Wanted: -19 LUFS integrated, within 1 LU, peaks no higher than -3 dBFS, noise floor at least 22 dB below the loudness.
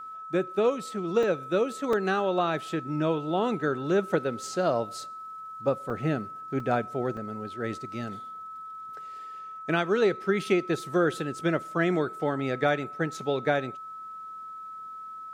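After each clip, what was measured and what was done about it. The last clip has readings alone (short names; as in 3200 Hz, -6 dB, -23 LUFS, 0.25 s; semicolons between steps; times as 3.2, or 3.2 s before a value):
dropouts 5; longest dropout 3.0 ms; steady tone 1300 Hz; tone level -38 dBFS; loudness -28.5 LUFS; peak -11.0 dBFS; loudness target -19.0 LUFS
-> interpolate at 1.23/1.93/5.9/6.6/7.17, 3 ms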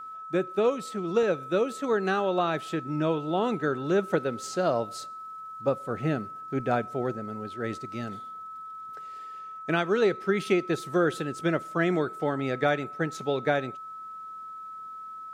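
dropouts 0; steady tone 1300 Hz; tone level -38 dBFS
-> notch 1300 Hz, Q 30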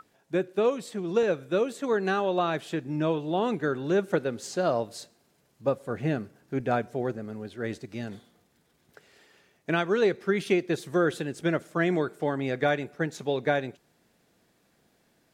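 steady tone none; loudness -28.5 LUFS; peak -11.5 dBFS; loudness target -19.0 LUFS
-> gain +9.5 dB; limiter -3 dBFS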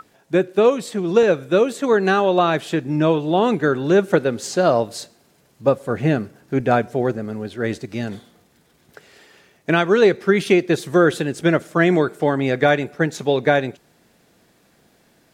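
loudness -19.0 LUFS; peak -3.0 dBFS; noise floor -58 dBFS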